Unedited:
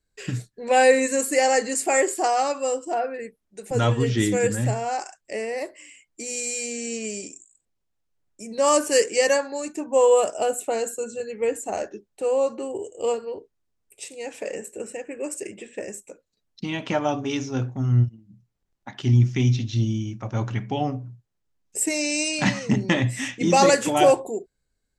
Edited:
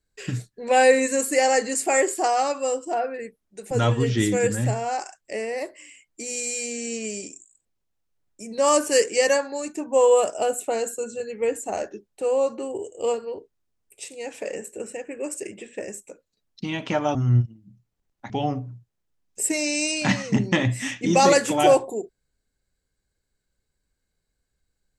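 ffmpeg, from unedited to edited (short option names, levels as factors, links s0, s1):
-filter_complex "[0:a]asplit=3[s0][s1][s2];[s0]atrim=end=17.152[s3];[s1]atrim=start=17.778:end=18.932[s4];[s2]atrim=start=20.668[s5];[s3][s4]acrossfade=d=0.004:c1=hsin:c2=hsin[s6];[s6][s5]acrossfade=d=0.004:c1=hsin:c2=hsin"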